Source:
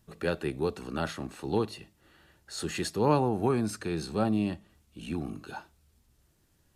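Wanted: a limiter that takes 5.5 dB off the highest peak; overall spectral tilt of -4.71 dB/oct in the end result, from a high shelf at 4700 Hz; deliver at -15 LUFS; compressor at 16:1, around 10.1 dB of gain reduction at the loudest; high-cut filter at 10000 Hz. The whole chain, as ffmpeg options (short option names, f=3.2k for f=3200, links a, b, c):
-af "lowpass=10k,highshelf=f=4.7k:g=3.5,acompressor=threshold=-30dB:ratio=16,volume=23.5dB,alimiter=limit=-3dB:level=0:latency=1"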